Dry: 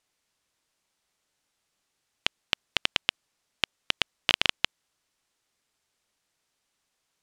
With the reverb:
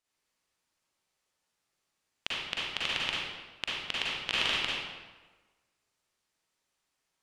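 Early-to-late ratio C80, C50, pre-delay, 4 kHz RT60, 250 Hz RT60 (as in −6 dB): 0.0 dB, −4.0 dB, 38 ms, 0.90 s, 1.3 s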